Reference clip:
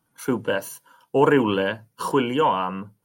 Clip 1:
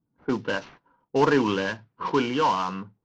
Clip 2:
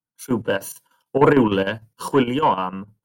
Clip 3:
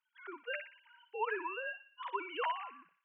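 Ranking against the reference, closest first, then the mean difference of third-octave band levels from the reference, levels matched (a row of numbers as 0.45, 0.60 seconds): 2, 1, 3; 3.0, 5.5, 14.0 decibels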